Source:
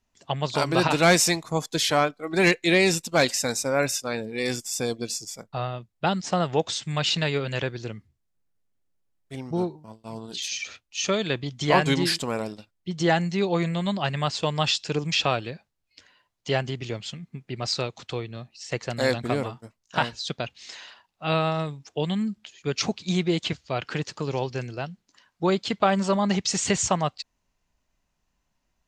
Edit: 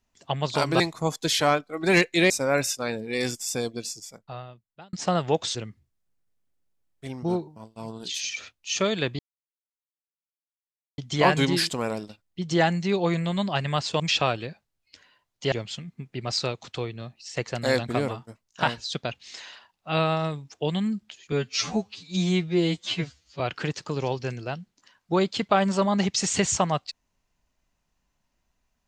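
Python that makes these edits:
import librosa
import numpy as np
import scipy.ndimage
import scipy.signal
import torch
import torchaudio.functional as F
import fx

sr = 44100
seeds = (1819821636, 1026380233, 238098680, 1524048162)

y = fx.edit(x, sr, fx.cut(start_s=0.8, length_s=0.5),
    fx.cut(start_s=2.8, length_s=0.75),
    fx.fade_out_span(start_s=4.66, length_s=1.52),
    fx.cut(start_s=6.8, length_s=1.03),
    fx.insert_silence(at_s=11.47, length_s=1.79),
    fx.cut(start_s=14.49, length_s=0.55),
    fx.cut(start_s=16.56, length_s=0.31),
    fx.stretch_span(start_s=22.67, length_s=1.04, factor=2.0), tone=tone)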